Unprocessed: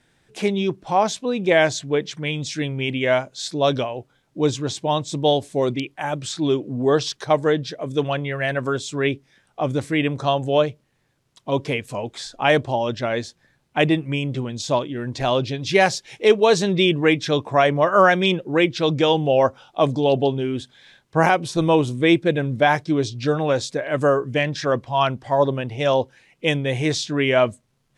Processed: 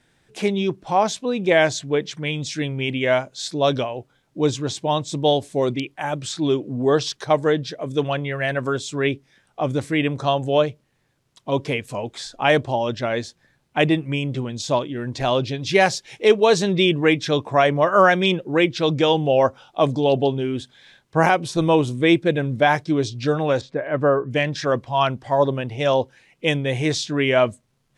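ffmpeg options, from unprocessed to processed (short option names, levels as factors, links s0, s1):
-filter_complex "[0:a]asettb=1/sr,asplit=3[s0][s1][s2];[s0]atrim=end=23.614[s3];[s1]atrim=start=23.61:end=24.31,asetpts=PTS-STARTPTS,afade=t=in:d=0.004:c=qsin,afade=t=out:st=0.696:d=0.004:c=qsin,lowpass=1900[s4];[s2]atrim=start=24.306[s5];[s3][s4]acrossfade=d=0.004:c1=hsin:c2=qsin[s6];[s6][s5]acrossfade=d=0.004:c1=qsin:c2=hsin"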